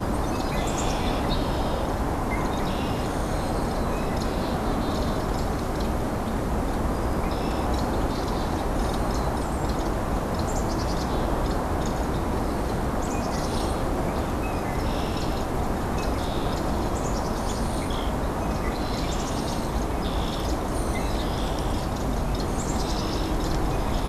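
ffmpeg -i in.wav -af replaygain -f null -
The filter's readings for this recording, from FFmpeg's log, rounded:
track_gain = +11.8 dB
track_peak = 0.174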